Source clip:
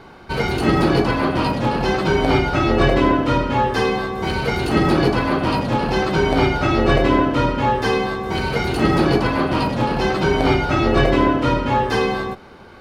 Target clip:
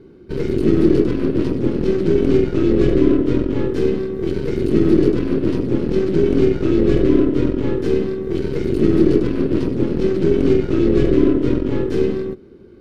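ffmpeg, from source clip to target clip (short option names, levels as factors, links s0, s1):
-af "aeval=exprs='0.794*(cos(1*acos(clip(val(0)/0.794,-1,1)))-cos(1*PI/2))+0.158*(cos(8*acos(clip(val(0)/0.794,-1,1)))-cos(8*PI/2))':c=same,lowshelf=f=540:t=q:w=3:g=13,volume=0.168"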